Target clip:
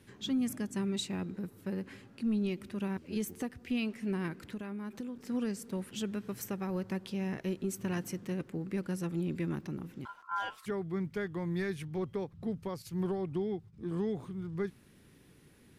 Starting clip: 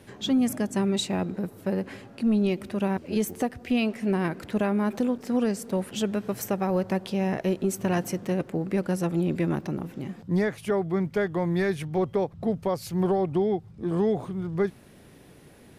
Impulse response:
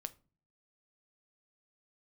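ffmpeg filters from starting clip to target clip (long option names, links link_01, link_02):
-filter_complex "[0:a]asettb=1/sr,asplit=3[link_01][link_02][link_03];[link_01]atrim=end=12.824[link_04];[link_02]atrim=start=12.82:end=13.73,asetpts=PTS-STARTPTS,afade=type=in:duration=0.004:curve=qsin,afade=type=out:start_time=0.906:duration=0.004:curve=qsin,agate=range=-10dB:threshold=-39dB:ratio=16:detection=peak[link_05];[link_03]atrim=start=13.726[link_06];[link_04][link_05]acrossfade=duration=0.004:curve1=hsin:curve2=qsin[link_07];[link_07][link_06]acrossfade=duration=0.004:curve1=qsin:curve2=hsin,equalizer=frequency=660:width_type=o:width=0.9:gain=-10,asplit=3[link_08][link_09][link_10];[link_08]afade=type=out:start_time=4.35:duration=0.02[link_11];[link_09]acompressor=threshold=-30dB:ratio=6,afade=type=in:start_time=4.35:duration=0.02,afade=type=out:start_time=5.15:duration=0.02[link_12];[link_10]afade=type=in:start_time=5.15:duration=0.02[link_13];[link_11][link_12][link_13]amix=inputs=3:normalize=0,asettb=1/sr,asplit=3[link_14][link_15][link_16];[link_14]atrim=end=10.054[link_17];[link_15]atrim=start=10.05:end=10.66,asetpts=PTS-STARTPTS,afade=type=in:duration=0.004:curve=qsin,afade=type=out:start_time=0.606:duration=0.004:curve=qsin,aeval=exprs='val(0)*sin(2*PI*1200*n/s)':channel_layout=same[link_18];[link_16]atrim=start=10.656[link_19];[link_17][link_18]acrossfade=duration=0.004:curve1=hsin:curve2=qsin[link_20];[link_20][link_19]acrossfade=duration=0.004:curve1=qsin:curve2=hsin,volume=-7.5dB"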